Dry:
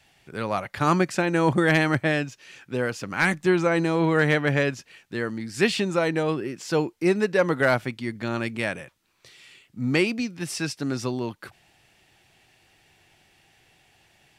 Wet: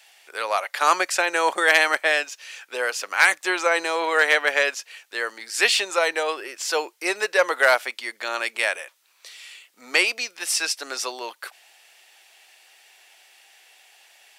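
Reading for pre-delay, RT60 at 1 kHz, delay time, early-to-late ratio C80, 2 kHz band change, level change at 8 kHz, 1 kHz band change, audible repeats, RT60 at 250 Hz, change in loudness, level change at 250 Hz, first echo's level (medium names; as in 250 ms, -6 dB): no reverb, no reverb, no echo, no reverb, +6.0 dB, +10.0 dB, +4.5 dB, no echo, no reverb, +2.5 dB, -14.5 dB, no echo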